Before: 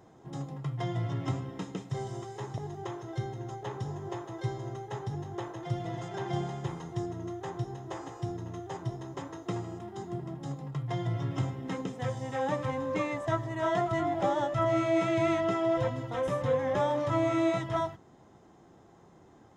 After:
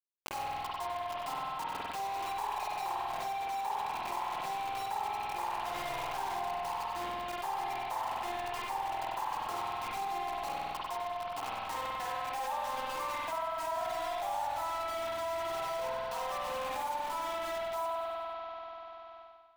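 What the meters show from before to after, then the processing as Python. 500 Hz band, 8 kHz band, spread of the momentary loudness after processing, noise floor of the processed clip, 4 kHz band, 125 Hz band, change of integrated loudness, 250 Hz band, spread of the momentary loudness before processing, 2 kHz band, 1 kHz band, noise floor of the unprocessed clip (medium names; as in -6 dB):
-7.5 dB, +3.5 dB, 3 LU, -46 dBFS, +4.0 dB, -23.0 dB, -3.5 dB, -18.5 dB, 12 LU, -0.5 dB, +3.5 dB, -57 dBFS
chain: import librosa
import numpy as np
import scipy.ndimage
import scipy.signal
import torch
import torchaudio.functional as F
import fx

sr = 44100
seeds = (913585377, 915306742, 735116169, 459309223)

y = fx.spec_gate(x, sr, threshold_db=-30, keep='strong')
y = fx.dereverb_blind(y, sr, rt60_s=1.7)
y = fx.rider(y, sr, range_db=10, speed_s=0.5)
y = fx.ladder_bandpass(y, sr, hz=990.0, resonance_pct=65)
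y = fx.cheby_harmonics(y, sr, harmonics=(2, 5, 8), levels_db=(-27, -35, -33), full_scale_db=-29.0)
y = fx.quant_dither(y, sr, seeds[0], bits=8, dither='none')
y = fx.echo_feedback(y, sr, ms=95, feedback_pct=43, wet_db=-9.0)
y = fx.rev_spring(y, sr, rt60_s=1.5, pass_ms=(48,), chirp_ms=25, drr_db=-5.5)
y = fx.env_flatten(y, sr, amount_pct=70)
y = F.gain(torch.from_numpy(y), -1.5).numpy()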